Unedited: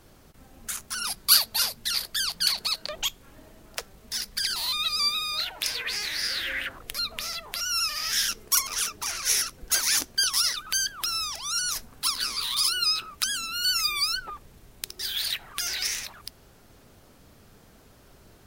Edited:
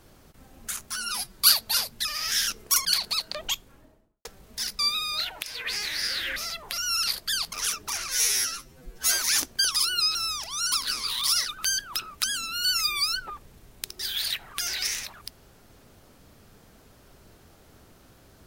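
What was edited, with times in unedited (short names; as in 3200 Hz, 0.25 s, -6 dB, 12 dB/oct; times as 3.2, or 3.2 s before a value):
0.92–1.22 stretch 1.5×
1.9–2.39 swap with 7.86–8.66
3.03–3.79 studio fade out
4.33–4.99 cut
5.63–5.88 fade in, from -15.5 dB
6.56–7.19 cut
9.25–9.8 stretch 2×
10.35–11.07 swap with 12.6–12.99
11.64–12.05 cut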